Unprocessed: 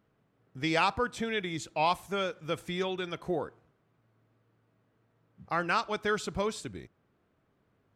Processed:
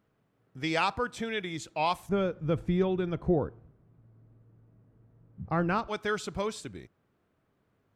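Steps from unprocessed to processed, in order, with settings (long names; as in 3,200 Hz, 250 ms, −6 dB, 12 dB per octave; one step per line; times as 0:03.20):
0:02.09–0:05.88: spectral tilt −4.5 dB per octave
level −1 dB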